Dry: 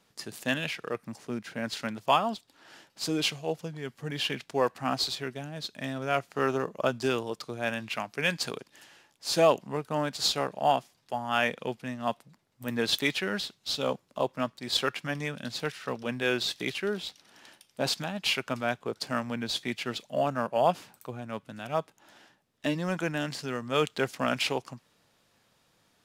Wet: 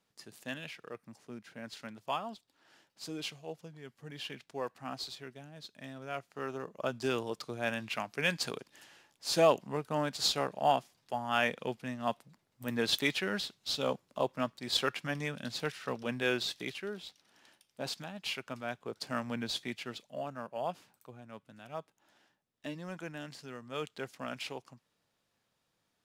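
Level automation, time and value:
0:06.52 −11.5 dB
0:07.22 −3 dB
0:16.27 −3 dB
0:16.90 −9.5 dB
0:18.62 −9.5 dB
0:19.38 −3 dB
0:20.24 −12 dB

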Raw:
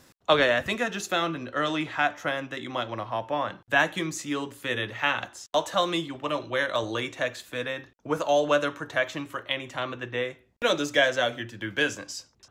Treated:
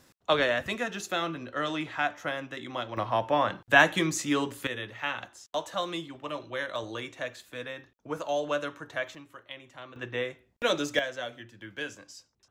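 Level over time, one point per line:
−4 dB
from 0:02.97 +3 dB
from 0:04.67 −7 dB
from 0:09.15 −14 dB
from 0:09.96 −2.5 dB
from 0:10.99 −11 dB

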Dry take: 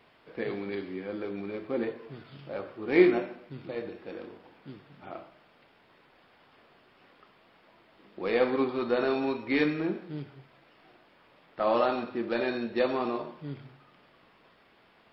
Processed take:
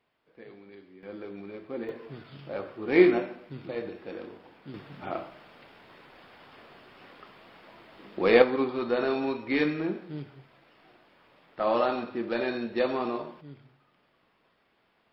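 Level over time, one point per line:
−15 dB
from 0:01.03 −5 dB
from 0:01.89 +1.5 dB
from 0:04.74 +8 dB
from 0:08.42 0 dB
from 0:13.41 −8 dB

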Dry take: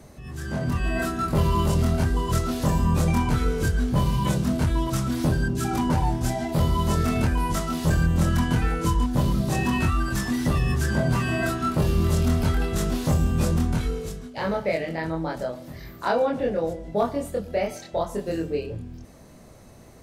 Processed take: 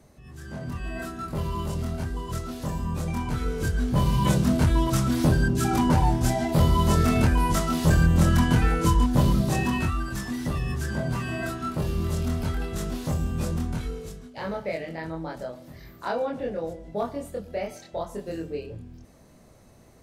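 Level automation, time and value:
0:03.04 −8 dB
0:04.30 +2 dB
0:09.31 +2 dB
0:10.09 −5.5 dB

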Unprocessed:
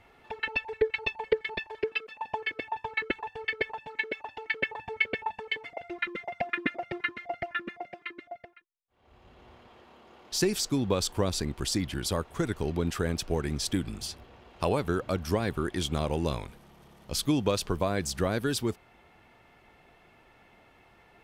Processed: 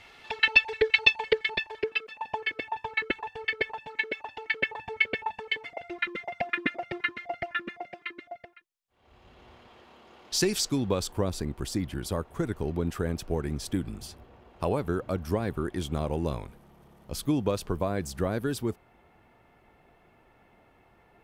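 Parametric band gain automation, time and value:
parametric band 4,500 Hz 2.7 octaves
0:01.08 +15 dB
0:01.90 +3 dB
0:10.58 +3 dB
0:11.24 −8 dB

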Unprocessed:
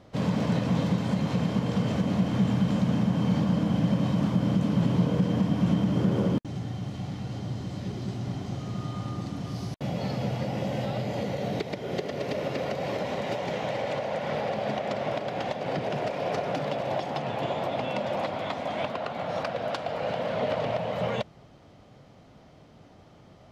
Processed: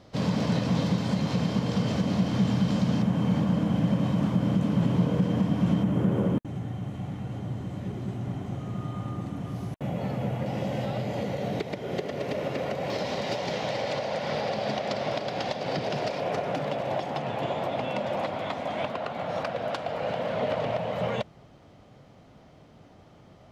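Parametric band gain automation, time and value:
parametric band 4,800 Hz 0.89 octaves
+6 dB
from 0:03.02 −4 dB
from 0:05.83 −14 dB
from 0:10.46 −3 dB
from 0:12.90 +9 dB
from 0:16.20 −2 dB

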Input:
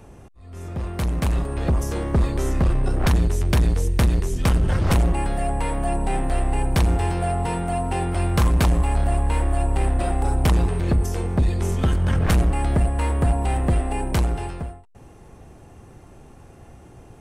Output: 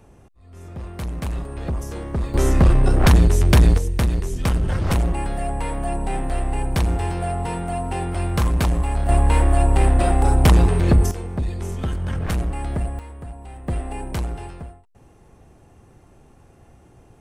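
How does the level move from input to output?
−5 dB
from 0:02.34 +5.5 dB
from 0:03.78 −1.5 dB
from 0:09.09 +5 dB
from 0:11.11 −5 dB
from 0:12.99 −16 dB
from 0:13.68 −5 dB

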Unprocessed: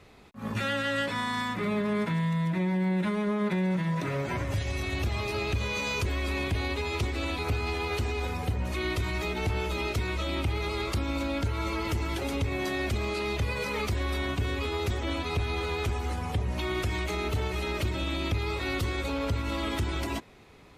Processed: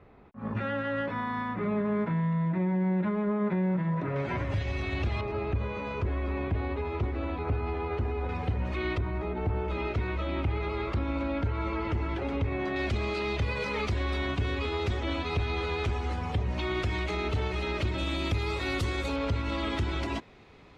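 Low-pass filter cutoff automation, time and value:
1,500 Hz
from 0:04.16 3,200 Hz
from 0:05.21 1,400 Hz
from 0:08.29 2,700 Hz
from 0:08.98 1,200 Hz
from 0:09.68 2,100 Hz
from 0:12.76 4,600 Hz
from 0:17.98 9,200 Hz
from 0:19.16 4,800 Hz

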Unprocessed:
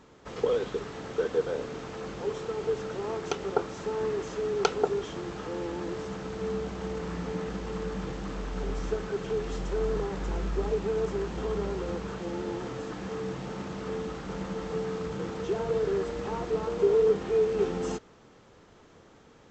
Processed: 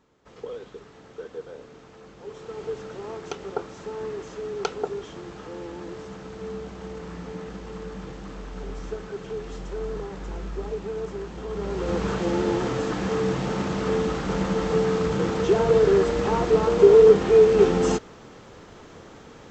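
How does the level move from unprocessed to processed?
0:02.16 −9.5 dB
0:02.58 −2.5 dB
0:11.46 −2.5 dB
0:12.04 +10 dB

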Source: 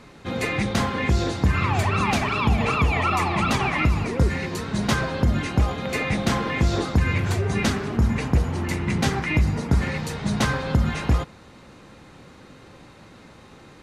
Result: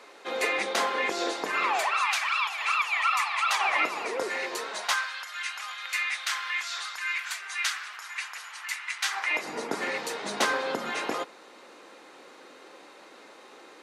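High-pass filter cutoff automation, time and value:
high-pass filter 24 dB per octave
0:01.67 400 Hz
0:02.11 1,100 Hz
0:03.41 1,100 Hz
0:03.83 440 Hz
0:04.67 440 Hz
0:05.08 1,300 Hz
0:09.02 1,300 Hz
0:09.52 340 Hz

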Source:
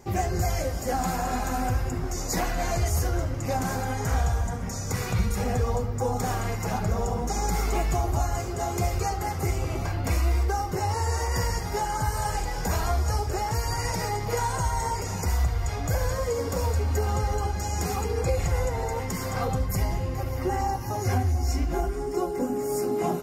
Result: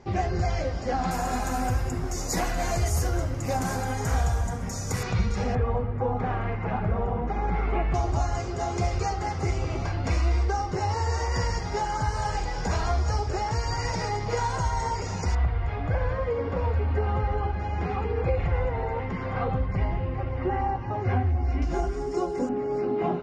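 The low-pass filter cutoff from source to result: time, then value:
low-pass filter 24 dB per octave
5,000 Hz
from 0:01.11 12,000 Hz
from 0:05.03 5,700 Hz
from 0:05.55 2,700 Hz
from 0:07.94 6,100 Hz
from 0:15.35 3,000 Hz
from 0:21.62 6,800 Hz
from 0:22.49 3,400 Hz

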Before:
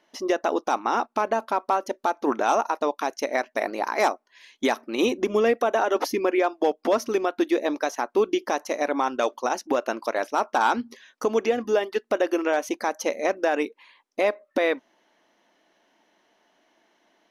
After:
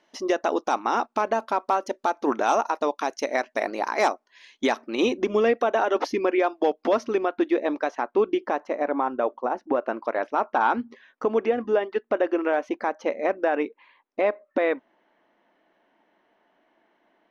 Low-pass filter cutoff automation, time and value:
0:04.08 8,400 Hz
0:05.50 4,500 Hz
0:06.89 4,500 Hz
0:07.30 2,700 Hz
0:08.14 2,700 Hz
0:09.39 1,100 Hz
0:10.21 2,200 Hz

